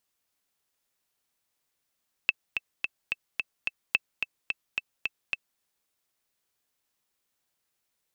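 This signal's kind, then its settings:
click track 217 BPM, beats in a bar 6, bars 2, 2,640 Hz, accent 6.5 dB −8 dBFS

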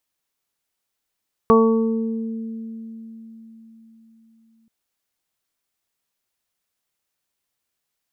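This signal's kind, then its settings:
harmonic partials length 3.18 s, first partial 225 Hz, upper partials 3.5/−9.5/−8/1 dB, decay 4.52 s, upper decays 1.81/0.58/0.90/0.69 s, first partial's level −14.5 dB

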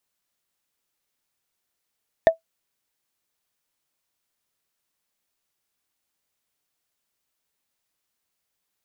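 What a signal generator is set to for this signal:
struck wood, lowest mode 654 Hz, decay 0.12 s, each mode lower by 10 dB, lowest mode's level −5.5 dB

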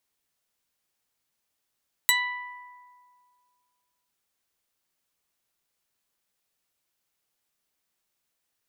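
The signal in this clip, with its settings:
Karplus-Strong string B5, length 2.00 s, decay 2.10 s, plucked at 0.21, medium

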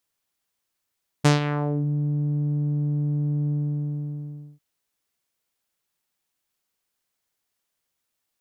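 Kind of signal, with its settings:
subtractive voice saw D3 12 dB per octave, low-pass 210 Hz, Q 1.5, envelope 5.5 octaves, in 0.61 s, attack 16 ms, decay 0.14 s, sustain −11 dB, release 1.09 s, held 2.26 s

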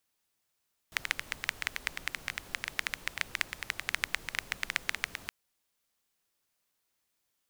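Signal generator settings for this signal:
rain-like ticks over hiss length 4.37 s, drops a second 11, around 2,000 Hz, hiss −13 dB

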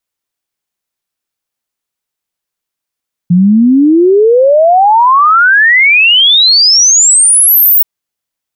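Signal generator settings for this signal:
exponential sine sweep 170 Hz → 16,000 Hz 4.53 s −3 dBFS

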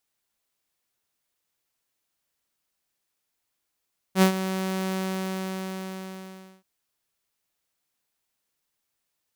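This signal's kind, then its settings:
note with an ADSR envelope saw 189 Hz, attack 70 ms, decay 97 ms, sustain −12.5 dB, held 0.78 s, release 1,700 ms −11 dBFS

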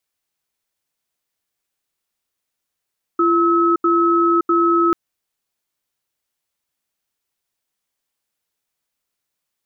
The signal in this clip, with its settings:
tone pair in a cadence 340 Hz, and 1,290 Hz, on 0.57 s, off 0.08 s, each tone −15 dBFS 1.74 s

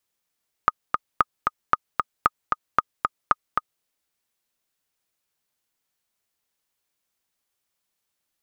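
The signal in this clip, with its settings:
click track 228 BPM, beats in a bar 2, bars 6, 1,240 Hz, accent 4 dB −3 dBFS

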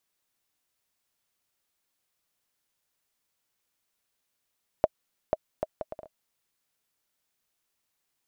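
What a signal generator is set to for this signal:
bouncing ball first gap 0.49 s, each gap 0.61, 628 Hz, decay 35 ms −8 dBFS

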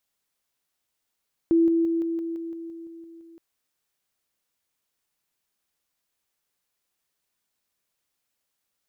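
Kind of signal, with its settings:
level staircase 332 Hz −15.5 dBFS, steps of −3 dB, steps 11, 0.17 s 0.00 s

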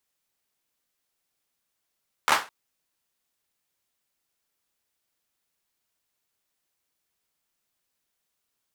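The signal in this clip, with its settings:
synth clap length 0.21 s, apart 13 ms, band 1,100 Hz, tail 0.28 s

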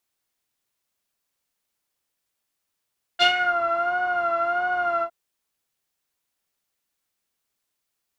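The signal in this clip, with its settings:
subtractive patch with vibrato F5, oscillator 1 saw, interval +12 semitones, oscillator 2 level −3.5 dB, sub −22 dB, noise −10.5 dB, filter lowpass, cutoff 950 Hz, filter envelope 2 octaves, filter decay 0.36 s, filter sustain 15%, attack 32 ms, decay 0.11 s, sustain −9 dB, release 0.08 s, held 1.83 s, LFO 1.5 Hz, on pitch 59 cents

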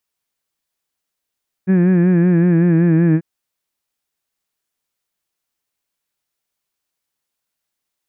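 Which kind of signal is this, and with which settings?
vowel from formants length 1.54 s, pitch 183 Hz, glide −2 semitones, vibrato depth 0.75 semitones, F1 270 Hz, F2 1,700 Hz, F3 2,400 Hz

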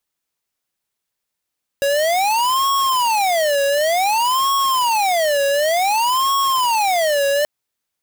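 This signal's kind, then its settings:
siren wail 557–1,100 Hz 0.55 per second square −17 dBFS 5.63 s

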